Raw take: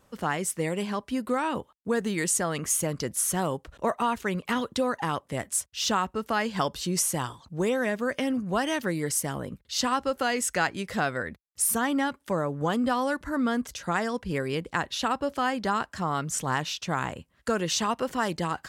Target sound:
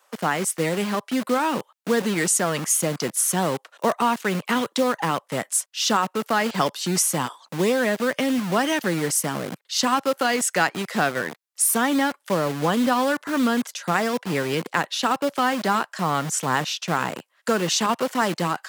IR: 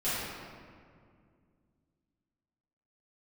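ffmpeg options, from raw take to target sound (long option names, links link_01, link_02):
-filter_complex "[0:a]acrossover=split=560|2100[link_01][link_02][link_03];[link_01]acrusher=bits=5:mix=0:aa=0.000001[link_04];[link_04][link_02][link_03]amix=inputs=3:normalize=0,highpass=frequency=140:width=0.5412,highpass=frequency=140:width=1.3066,volume=5dB"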